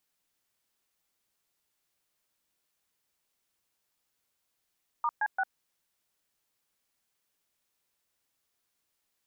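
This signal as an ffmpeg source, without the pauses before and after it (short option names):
-f lavfi -i "aevalsrc='0.0398*clip(min(mod(t,0.172),0.051-mod(t,0.172))/0.002,0,1)*(eq(floor(t/0.172),0)*(sin(2*PI*941*mod(t,0.172))+sin(2*PI*1209*mod(t,0.172)))+eq(floor(t/0.172),1)*(sin(2*PI*852*mod(t,0.172))+sin(2*PI*1633*mod(t,0.172)))+eq(floor(t/0.172),2)*(sin(2*PI*770*mod(t,0.172))+sin(2*PI*1477*mod(t,0.172))))':d=0.516:s=44100"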